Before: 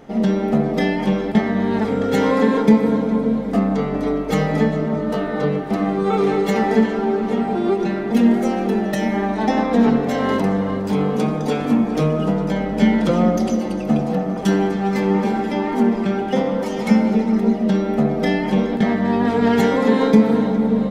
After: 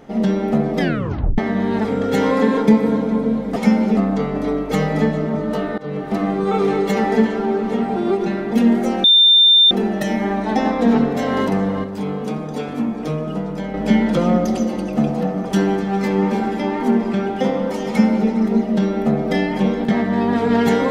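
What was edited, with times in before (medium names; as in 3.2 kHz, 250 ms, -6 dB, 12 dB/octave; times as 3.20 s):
0.80 s: tape stop 0.58 s
5.37–5.66 s: fade in, from -21 dB
8.63 s: add tone 3.59 kHz -7.5 dBFS 0.67 s
10.76–12.66 s: gain -5 dB
16.80–17.21 s: copy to 3.56 s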